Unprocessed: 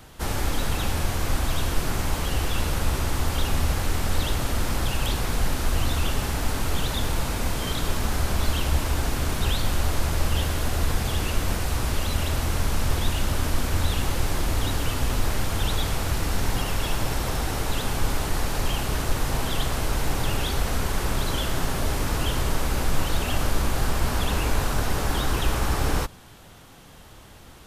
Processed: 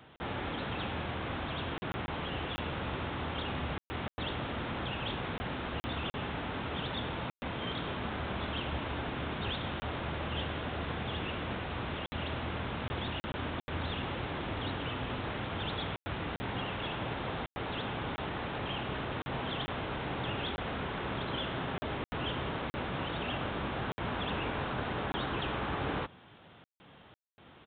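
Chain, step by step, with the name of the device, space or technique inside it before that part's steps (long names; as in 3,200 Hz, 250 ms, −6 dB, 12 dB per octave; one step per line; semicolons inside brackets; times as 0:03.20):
call with lost packets (high-pass filter 120 Hz 12 dB per octave; downsampling to 8,000 Hz; dropped packets of 20 ms bursts)
level −6 dB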